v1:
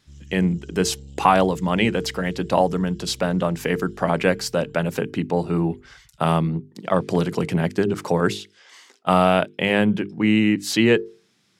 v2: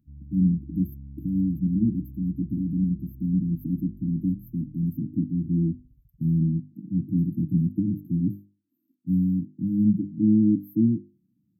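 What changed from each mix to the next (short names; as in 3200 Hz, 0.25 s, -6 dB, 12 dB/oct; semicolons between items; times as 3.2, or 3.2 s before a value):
speech: add high shelf 8000 Hz -8.5 dB; master: add brick-wall FIR band-stop 330–12000 Hz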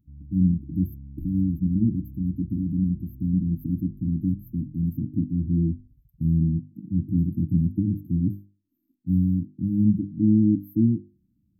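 speech: remove HPF 120 Hz 24 dB/oct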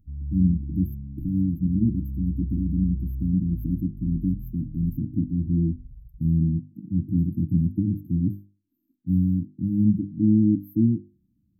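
background: remove HPF 160 Hz 6 dB/oct; reverb: on, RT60 0.60 s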